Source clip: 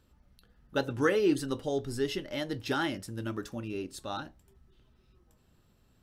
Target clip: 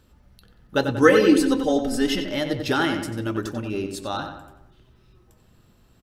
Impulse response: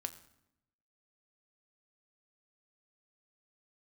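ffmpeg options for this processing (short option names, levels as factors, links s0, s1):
-filter_complex "[0:a]asettb=1/sr,asplit=3[s0][s1][s2];[s0]atrim=end=1.024[s3];[s1]atrim=start=1.02:end=2.21,asetpts=PTS-STARTPTS,afade=t=in:d=0.004:c=qsin,afade=t=out:st=1.186:d=0.004:c=qsin,aecho=1:1:3.9:0.9,atrim=end_sample=52479[s4];[s2]atrim=start=2.206[s5];[s3][s4]acrossfade=d=0.004:c1=hsin:c2=qsin[s6];[s6][s5]acrossfade=d=0.004:c1=qsin:c2=hsin,asplit=2[s7][s8];[s8]adelay=92,lowpass=f=3200:p=1,volume=0.473,asplit=2[s9][s10];[s10]adelay=92,lowpass=f=3200:p=1,volume=0.51,asplit=2[s11][s12];[s12]adelay=92,lowpass=f=3200:p=1,volume=0.51,asplit=2[s13][s14];[s14]adelay=92,lowpass=f=3200:p=1,volume=0.51,asplit=2[s15][s16];[s16]adelay=92,lowpass=f=3200:p=1,volume=0.51,asplit=2[s17][s18];[s18]adelay=92,lowpass=f=3200:p=1,volume=0.51[s19];[s9][s11][s13][s15][s17][s19]amix=inputs=6:normalize=0[s20];[s7][s20]amix=inputs=2:normalize=0,volume=2.51"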